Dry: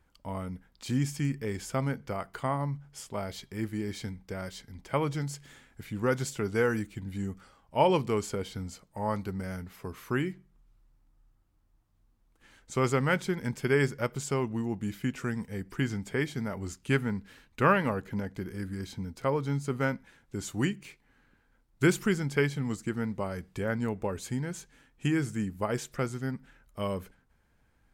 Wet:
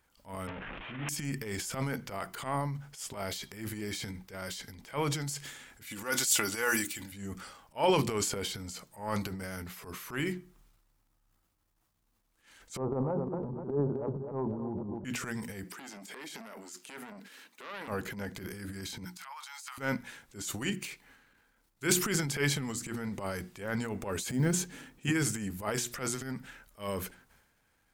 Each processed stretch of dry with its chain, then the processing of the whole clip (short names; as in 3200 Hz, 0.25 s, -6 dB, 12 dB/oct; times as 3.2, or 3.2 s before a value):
0.47–1.09 delta modulation 16 kbps, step -28.5 dBFS + air absorption 200 m + detuned doubles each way 52 cents
5.85–7.12 tilt +2.5 dB/oct + comb 3.5 ms, depth 44%
12.77–15.05 steep low-pass 1000 Hz 48 dB/oct + feedback echo 0.25 s, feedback 42%, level -11 dB
15.64–17.88 HPF 220 Hz 24 dB/oct + compressor 2.5:1, threshold -41 dBFS + core saturation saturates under 1900 Hz
19.05–19.78 steep high-pass 800 Hz 48 dB/oct + compressor 4:1, threshold -42 dBFS
24.29–25.07 block floating point 7-bit + bell 210 Hz +12 dB 2.6 oct
whole clip: tilt +2 dB/oct; notches 60/120/180/240/300/360 Hz; transient shaper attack -12 dB, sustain +9 dB